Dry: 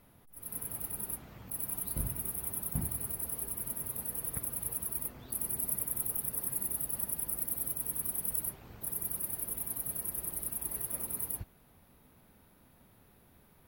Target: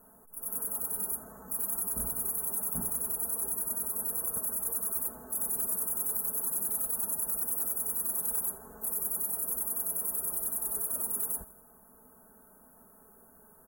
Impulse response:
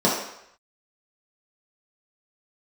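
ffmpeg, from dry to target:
-af "bass=frequency=250:gain=-10,treble=frequency=4000:gain=2,aecho=1:1:4.6:0.98,asoftclip=type=tanh:threshold=-30dB,asuperstop=centerf=3300:order=12:qfactor=0.65,aecho=1:1:82|164|246|328:0.112|0.0606|0.0327|0.0177,volume=3.5dB"

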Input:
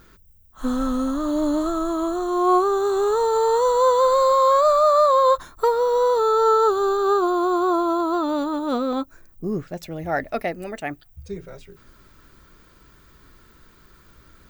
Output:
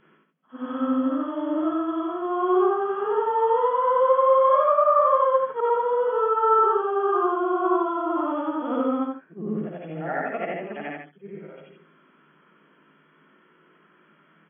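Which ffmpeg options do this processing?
ffmpeg -i in.wav -af "afftfilt=real='re':imag='-im':win_size=8192:overlap=0.75,afftfilt=real='re*between(b*sr/4096,140,3400)':imag='im*between(b*sr/4096,140,3400)':win_size=4096:overlap=0.75,aecho=1:1:55|74:0.596|0.562" out.wav

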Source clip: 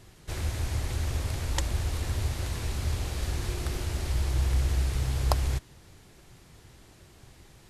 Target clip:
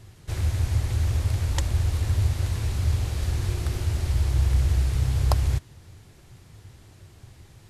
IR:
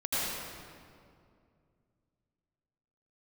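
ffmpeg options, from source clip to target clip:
-af "equalizer=frequency=97:width=1.6:gain=10.5"

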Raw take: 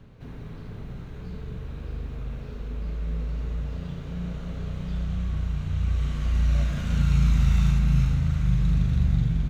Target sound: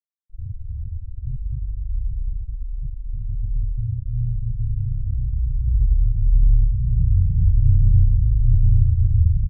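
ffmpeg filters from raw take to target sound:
ffmpeg -i in.wav -filter_complex "[0:a]dynaudnorm=framelen=210:gausssize=3:maxgain=6.5dB,flanger=delay=4:depth=9.6:regen=-30:speed=0.24:shape=triangular,lowpass=frequency=3700:poles=1,asetrate=29433,aresample=44100,atempo=1.49831,asplit=2[link_01][link_02];[link_02]acompressor=threshold=-30dB:ratio=6,volume=-1dB[link_03];[link_01][link_03]amix=inputs=2:normalize=0,afftfilt=real='re*gte(hypot(re,im),0.282)':imag='im*gte(hypot(re,im),0.282)':win_size=1024:overlap=0.75,volume=3.5dB" out.wav

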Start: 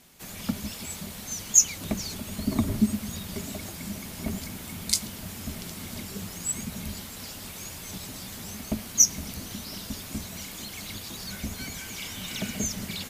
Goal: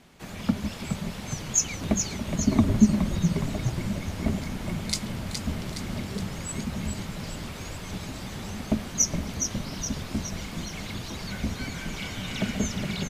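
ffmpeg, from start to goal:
ffmpeg -i in.wav -filter_complex "[0:a]aemphasis=mode=reproduction:type=75fm,asplit=2[link_01][link_02];[link_02]asplit=7[link_03][link_04][link_05][link_06][link_07][link_08][link_09];[link_03]adelay=417,afreqshift=-44,volume=-6dB[link_10];[link_04]adelay=834,afreqshift=-88,volume=-11dB[link_11];[link_05]adelay=1251,afreqshift=-132,volume=-16.1dB[link_12];[link_06]adelay=1668,afreqshift=-176,volume=-21.1dB[link_13];[link_07]adelay=2085,afreqshift=-220,volume=-26.1dB[link_14];[link_08]adelay=2502,afreqshift=-264,volume=-31.2dB[link_15];[link_09]adelay=2919,afreqshift=-308,volume=-36.2dB[link_16];[link_10][link_11][link_12][link_13][link_14][link_15][link_16]amix=inputs=7:normalize=0[link_17];[link_01][link_17]amix=inputs=2:normalize=0,volume=4dB" out.wav

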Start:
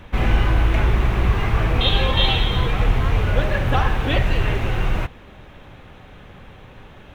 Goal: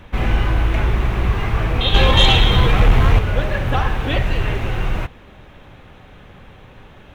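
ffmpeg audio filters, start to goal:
ffmpeg -i in.wav -filter_complex "[0:a]asettb=1/sr,asplit=3[link_01][link_02][link_03];[link_01]atrim=end=1.944[link_04];[link_02]atrim=start=1.94:end=3.19,asetpts=PTS-STARTPTS,afade=type=in:duration=0.004:curve=qsin,afade=type=out:start_time=1.246:duration=0.004:curve=qsin,acontrast=81[link_05];[link_03]atrim=start=3.186[link_06];[link_04][link_05]acrossfade=duration=0.004:curve1=hsin:curve2=qsin[link_07];[link_07][link_06]acrossfade=duration=0.004:curve1=qsin:curve2=hsin" out.wav

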